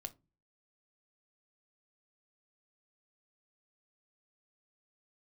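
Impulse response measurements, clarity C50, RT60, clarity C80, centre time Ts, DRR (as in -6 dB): 21.0 dB, 0.25 s, 29.5 dB, 4 ms, 7.5 dB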